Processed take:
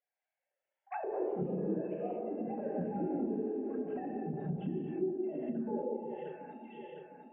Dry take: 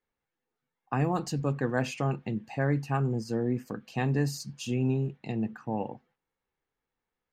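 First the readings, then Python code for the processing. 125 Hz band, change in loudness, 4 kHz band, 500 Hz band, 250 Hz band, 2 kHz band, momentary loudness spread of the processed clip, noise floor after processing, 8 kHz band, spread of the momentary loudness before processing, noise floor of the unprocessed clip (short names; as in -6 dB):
-14.5 dB, -6.5 dB, under -20 dB, -2.0 dB, -4.5 dB, -17.0 dB, 12 LU, under -85 dBFS, under -35 dB, 7 LU, under -85 dBFS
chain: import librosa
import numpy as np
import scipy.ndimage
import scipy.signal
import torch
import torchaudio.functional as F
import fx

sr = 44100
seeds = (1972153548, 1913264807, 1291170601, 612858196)

p1 = fx.sine_speech(x, sr)
p2 = fx.peak_eq(p1, sr, hz=1200.0, db=-13.5, octaves=0.38)
p3 = fx.over_compress(p2, sr, threshold_db=-31.0, ratio=-0.5)
p4 = p3 + fx.echo_alternate(p3, sr, ms=353, hz=860.0, feedback_pct=72, wet_db=-9.0, dry=0)
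p5 = fx.rev_gated(p4, sr, seeds[0], gate_ms=270, shape='flat', drr_db=-4.5)
p6 = fx.env_lowpass_down(p5, sr, base_hz=530.0, full_db=-24.5)
y = F.gain(torch.from_numpy(p6), -7.5).numpy()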